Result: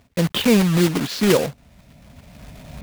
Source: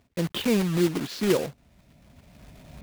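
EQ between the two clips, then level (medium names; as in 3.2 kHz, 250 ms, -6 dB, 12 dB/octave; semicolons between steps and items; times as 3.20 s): peaking EQ 350 Hz -5.5 dB 0.41 oct; +8.5 dB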